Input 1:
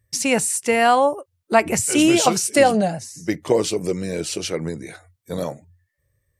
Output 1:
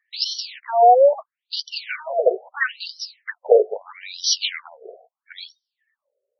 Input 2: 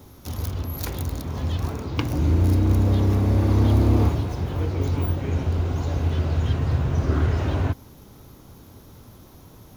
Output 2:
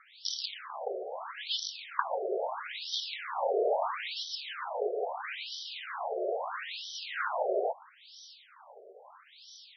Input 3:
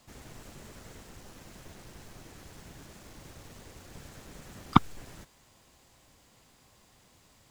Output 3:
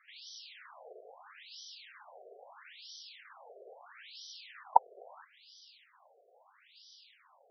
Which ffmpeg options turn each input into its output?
-af "bass=frequency=250:gain=-9,treble=frequency=4000:gain=10,aeval=exprs='1.12*(cos(1*acos(clip(val(0)/1.12,-1,1)))-cos(1*PI/2))+0.0891*(cos(2*acos(clip(val(0)/1.12,-1,1)))-cos(2*PI/2))+0.0126*(cos(6*acos(clip(val(0)/1.12,-1,1)))-cos(6*PI/2))+0.0355*(cos(8*acos(clip(val(0)/1.12,-1,1)))-cos(8*PI/2))':channel_layout=same,afftfilt=real='re*between(b*sr/1024,510*pow(4300/510,0.5+0.5*sin(2*PI*0.76*pts/sr))/1.41,510*pow(4300/510,0.5+0.5*sin(2*PI*0.76*pts/sr))*1.41)':imag='im*between(b*sr/1024,510*pow(4300/510,0.5+0.5*sin(2*PI*0.76*pts/sr))/1.41,510*pow(4300/510,0.5+0.5*sin(2*PI*0.76*pts/sr))*1.41)':win_size=1024:overlap=0.75,volume=6.5dB"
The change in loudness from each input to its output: −0.5, −11.5, −9.5 LU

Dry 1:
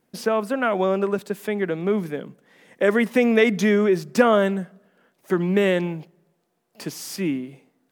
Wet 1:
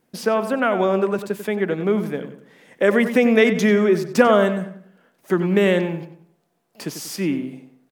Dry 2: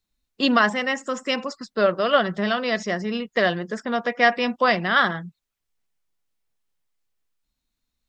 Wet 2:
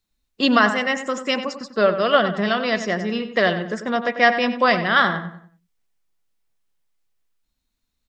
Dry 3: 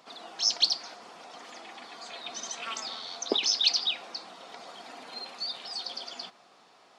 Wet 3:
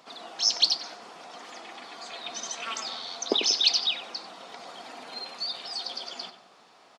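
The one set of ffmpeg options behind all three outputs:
-filter_complex "[0:a]asplit=2[link_01][link_02];[link_02]adelay=94,lowpass=frequency=2900:poles=1,volume=-10dB,asplit=2[link_03][link_04];[link_04]adelay=94,lowpass=frequency=2900:poles=1,volume=0.39,asplit=2[link_05][link_06];[link_06]adelay=94,lowpass=frequency=2900:poles=1,volume=0.39,asplit=2[link_07][link_08];[link_08]adelay=94,lowpass=frequency=2900:poles=1,volume=0.39[link_09];[link_01][link_03][link_05][link_07][link_09]amix=inputs=5:normalize=0,volume=2dB"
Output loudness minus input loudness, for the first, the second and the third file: +2.5, +2.5, +2.0 LU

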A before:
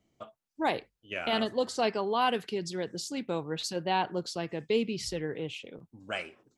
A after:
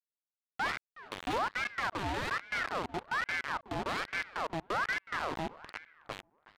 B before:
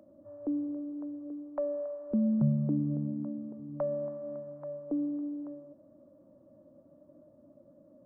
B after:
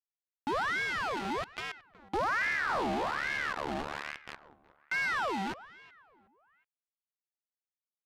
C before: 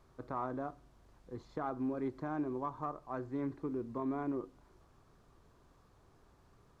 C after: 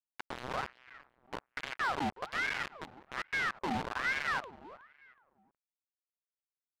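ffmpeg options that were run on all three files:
-filter_complex "[0:a]bandreject=frequency=50:width_type=h:width=6,bandreject=frequency=100:width_type=h:width=6,bandreject=frequency=150:width_type=h:width=6,bandreject=frequency=200:width_type=h:width=6,bandreject=frequency=250:width_type=h:width=6,bandreject=frequency=300:width_type=h:width=6,bandreject=frequency=350:width_type=h:width=6,aeval=exprs='val(0)+0.000501*(sin(2*PI*60*n/s)+sin(2*PI*2*60*n/s)/2+sin(2*PI*3*60*n/s)/3+sin(2*PI*4*60*n/s)/4+sin(2*PI*5*60*n/s)/5)':channel_layout=same,asplit=2[link_01][link_02];[link_02]acompressor=threshold=-39dB:ratio=16,volume=-2dB[link_03];[link_01][link_03]amix=inputs=2:normalize=0,lowshelf=frequency=410:width_type=q:width=1.5:gain=12,aresample=8000,acrusher=bits=3:mix=0:aa=0.000001,aresample=44100,asoftclip=type=tanh:threshold=-20.5dB,adynamicsmooth=sensitivity=5.5:basefreq=2100,asplit=2[link_04][link_05];[link_05]adelay=369,lowpass=frequency=1600:poles=1,volume=-17.5dB,asplit=2[link_06][link_07];[link_07]adelay=369,lowpass=frequency=1600:poles=1,volume=0.34,asplit=2[link_08][link_09];[link_09]adelay=369,lowpass=frequency=1600:poles=1,volume=0.34[link_10];[link_04][link_06][link_08][link_10]amix=inputs=4:normalize=0,aeval=exprs='val(0)*sin(2*PI*1200*n/s+1200*0.6/1.2*sin(2*PI*1.2*n/s))':channel_layout=same,volume=-5.5dB"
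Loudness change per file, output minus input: −3.0, +1.5, +4.0 LU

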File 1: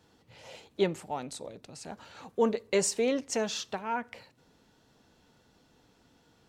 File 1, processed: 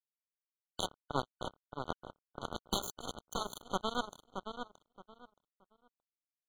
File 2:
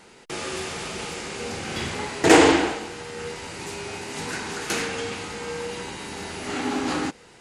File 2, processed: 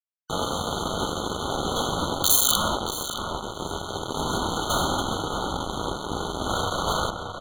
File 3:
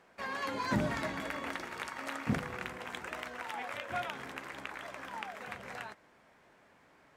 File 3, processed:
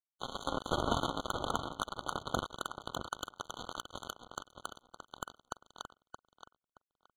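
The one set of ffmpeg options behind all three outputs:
-filter_complex "[0:a]aemphasis=mode=reproduction:type=75fm,bandreject=frequency=225:width_type=h:width=4,bandreject=frequency=450:width_type=h:width=4,bandreject=frequency=675:width_type=h:width=4,aeval=exprs='0.891*(cos(1*acos(clip(val(0)/0.891,-1,1)))-cos(1*PI/2))+0.0126*(cos(6*acos(clip(val(0)/0.891,-1,1)))-cos(6*PI/2))':channel_layout=same,asubboost=boost=5:cutoff=66,aeval=exprs='(mod(3.16*val(0)+1,2)-1)/3.16':channel_layout=same,afftfilt=real='re*lt(hypot(re,im),0.126)':imag='im*lt(hypot(re,im),0.126)':win_size=1024:overlap=0.75,acrusher=bits=4:mix=0:aa=0.5,asplit=2[link_01][link_02];[link_02]adelay=623,lowpass=frequency=3100:poles=1,volume=-7dB,asplit=2[link_03][link_04];[link_04]adelay=623,lowpass=frequency=3100:poles=1,volume=0.22,asplit=2[link_05][link_06];[link_06]adelay=623,lowpass=frequency=3100:poles=1,volume=0.22[link_07];[link_01][link_03][link_05][link_07]amix=inputs=4:normalize=0,alimiter=level_in=9.5dB:limit=-1dB:release=50:level=0:latency=1,afftfilt=real='re*eq(mod(floor(b*sr/1024/1500),2),0)':imag='im*eq(mod(floor(b*sr/1024/1500),2),0)':win_size=1024:overlap=0.75"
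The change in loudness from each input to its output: −9.5, −0.5, −1.0 LU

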